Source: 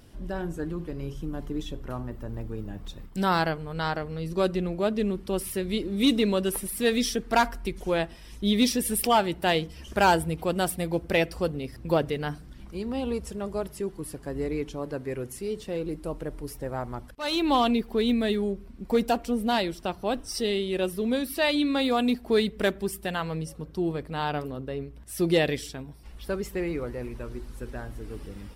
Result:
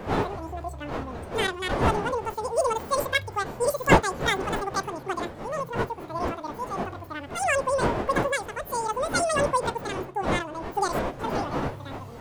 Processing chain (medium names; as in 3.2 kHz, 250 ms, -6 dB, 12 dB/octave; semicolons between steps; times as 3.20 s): wind noise 310 Hz -26 dBFS; harmonic-percussive split percussive -10 dB; speed mistake 33 rpm record played at 78 rpm